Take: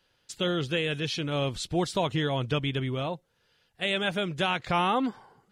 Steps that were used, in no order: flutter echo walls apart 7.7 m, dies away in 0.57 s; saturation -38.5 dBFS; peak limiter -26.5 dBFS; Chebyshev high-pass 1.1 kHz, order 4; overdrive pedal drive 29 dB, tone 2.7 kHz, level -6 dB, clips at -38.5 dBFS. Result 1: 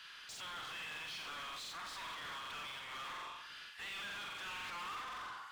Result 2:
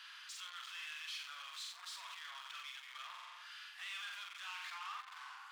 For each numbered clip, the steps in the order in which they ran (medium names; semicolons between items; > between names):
flutter echo > peak limiter > saturation > Chebyshev high-pass > overdrive pedal; peak limiter > flutter echo > overdrive pedal > saturation > Chebyshev high-pass